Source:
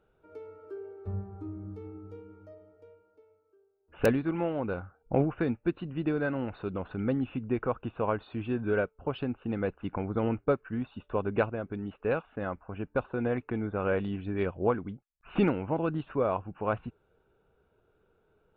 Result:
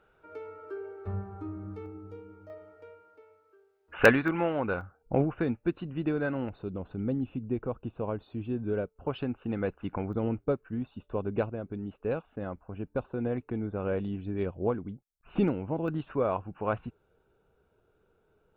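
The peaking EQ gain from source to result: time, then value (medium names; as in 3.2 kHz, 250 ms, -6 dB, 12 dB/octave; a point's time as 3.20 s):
peaking EQ 1.7 kHz 2.4 oct
+10 dB
from 1.86 s +3.5 dB
from 2.50 s +14 dB
from 4.28 s +7 dB
from 4.81 s -1 dB
from 6.49 s -12 dB
from 8.96 s -0.5 dB
from 10.13 s -8 dB
from 15.88 s -0.5 dB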